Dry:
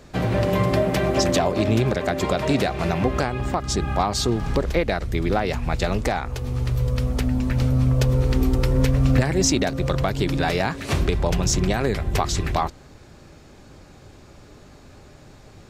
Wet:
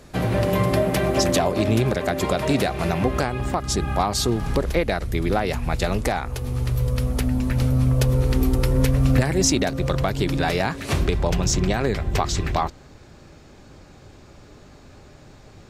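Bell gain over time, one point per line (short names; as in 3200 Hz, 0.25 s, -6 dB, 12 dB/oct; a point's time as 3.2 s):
bell 11000 Hz 0.46 oct
9.28 s +10.5 dB
9.78 s +4.5 dB
10.89 s +4.5 dB
11.62 s -6 dB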